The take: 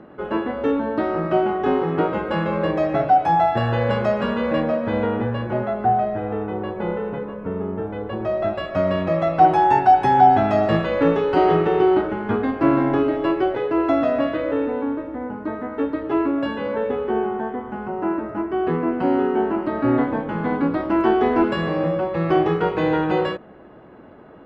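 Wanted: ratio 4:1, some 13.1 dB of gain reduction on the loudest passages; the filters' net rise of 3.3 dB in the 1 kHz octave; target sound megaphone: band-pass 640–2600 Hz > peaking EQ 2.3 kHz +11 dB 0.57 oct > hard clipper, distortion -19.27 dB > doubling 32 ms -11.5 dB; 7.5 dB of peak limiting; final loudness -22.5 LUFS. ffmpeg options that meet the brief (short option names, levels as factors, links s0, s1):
-filter_complex "[0:a]equalizer=f=1000:t=o:g=6.5,acompressor=threshold=0.0891:ratio=4,alimiter=limit=0.119:level=0:latency=1,highpass=640,lowpass=2600,equalizer=f=2300:t=o:w=0.57:g=11,asoftclip=type=hard:threshold=0.0596,asplit=2[s0][s1];[s1]adelay=32,volume=0.266[s2];[s0][s2]amix=inputs=2:normalize=0,volume=2.37"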